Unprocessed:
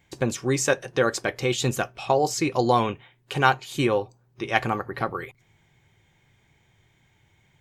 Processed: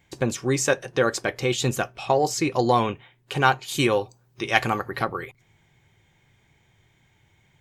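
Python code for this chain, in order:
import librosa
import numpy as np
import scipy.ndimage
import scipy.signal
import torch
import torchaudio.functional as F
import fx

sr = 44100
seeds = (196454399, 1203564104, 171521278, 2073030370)

p1 = fx.high_shelf(x, sr, hz=2400.0, db=8.0, at=(3.68, 5.05))
p2 = 10.0 ** (-9.0 / 20.0) * np.tanh(p1 / 10.0 ** (-9.0 / 20.0))
p3 = p1 + F.gain(torch.from_numpy(p2), -7.0).numpy()
y = F.gain(torch.from_numpy(p3), -2.5).numpy()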